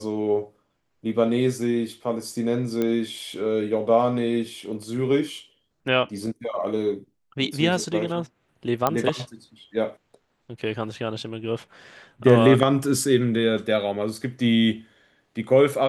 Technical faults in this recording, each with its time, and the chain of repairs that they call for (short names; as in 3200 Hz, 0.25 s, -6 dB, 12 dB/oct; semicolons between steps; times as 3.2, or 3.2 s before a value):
2.82 pop -13 dBFS
8.87 pop -7 dBFS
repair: de-click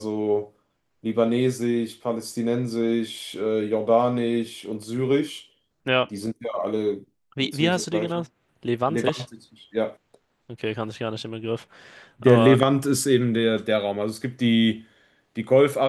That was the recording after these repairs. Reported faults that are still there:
none